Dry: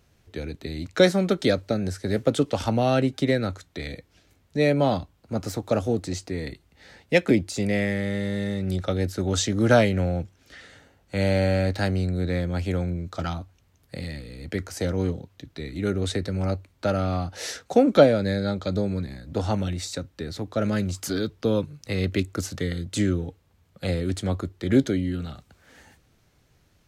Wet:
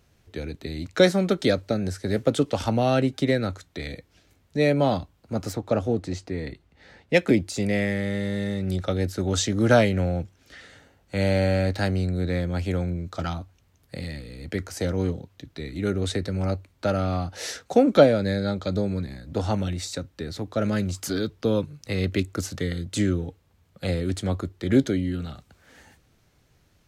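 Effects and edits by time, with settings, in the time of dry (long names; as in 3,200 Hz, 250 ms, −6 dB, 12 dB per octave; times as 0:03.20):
0:05.53–0:07.14: low-pass filter 3,100 Hz 6 dB per octave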